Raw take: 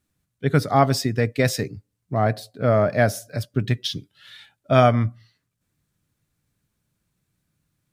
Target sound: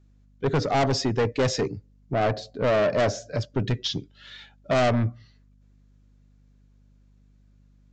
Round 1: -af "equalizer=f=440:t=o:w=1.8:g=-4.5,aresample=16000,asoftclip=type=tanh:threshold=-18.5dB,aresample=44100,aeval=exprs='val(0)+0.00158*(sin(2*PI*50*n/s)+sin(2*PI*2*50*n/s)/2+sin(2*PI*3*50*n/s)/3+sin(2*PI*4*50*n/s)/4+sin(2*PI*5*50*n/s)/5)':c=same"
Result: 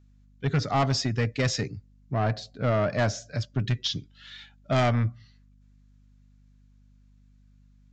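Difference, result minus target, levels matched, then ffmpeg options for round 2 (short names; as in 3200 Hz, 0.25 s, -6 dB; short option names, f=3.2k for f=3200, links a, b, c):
500 Hz band -3.5 dB
-af "equalizer=f=440:t=o:w=1.8:g=7.5,aresample=16000,asoftclip=type=tanh:threshold=-18.5dB,aresample=44100,aeval=exprs='val(0)+0.00158*(sin(2*PI*50*n/s)+sin(2*PI*2*50*n/s)/2+sin(2*PI*3*50*n/s)/3+sin(2*PI*4*50*n/s)/4+sin(2*PI*5*50*n/s)/5)':c=same"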